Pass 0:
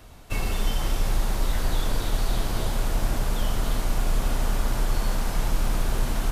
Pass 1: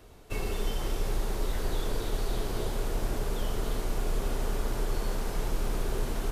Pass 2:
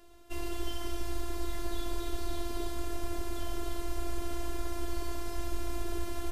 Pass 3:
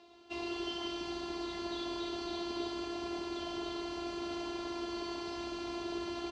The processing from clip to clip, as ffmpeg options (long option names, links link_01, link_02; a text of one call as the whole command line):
ffmpeg -i in.wav -af "equalizer=frequency=410:width=2.5:gain=10.5,volume=-6.5dB" out.wav
ffmpeg -i in.wav -af "afftfilt=real='hypot(re,im)*cos(PI*b)':imag='0':win_size=512:overlap=0.75" out.wav
ffmpeg -i in.wav -af "highpass=160,equalizer=frequency=530:width_type=q:width=4:gain=-3,equalizer=frequency=840:width_type=q:width=4:gain=6,equalizer=frequency=1600:width_type=q:width=4:gain=-7,equalizer=frequency=2600:width_type=q:width=4:gain=3,equalizer=frequency=4100:width_type=q:width=4:gain=5,lowpass=frequency=5400:width=0.5412,lowpass=frequency=5400:width=1.3066,aecho=1:1:159:0.447,volume=1dB" out.wav